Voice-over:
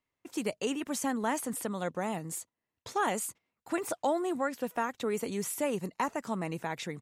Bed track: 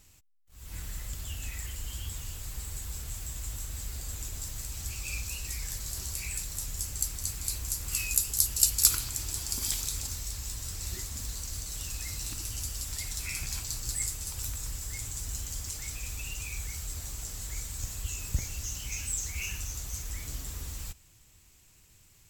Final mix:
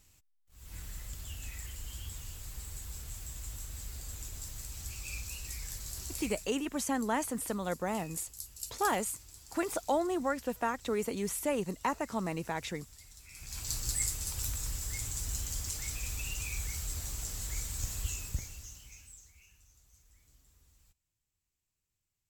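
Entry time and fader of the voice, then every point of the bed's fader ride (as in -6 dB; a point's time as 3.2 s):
5.85 s, -0.5 dB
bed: 6.23 s -5 dB
6.59 s -18.5 dB
13.28 s -18.5 dB
13.7 s 0 dB
18.06 s 0 dB
19.47 s -27 dB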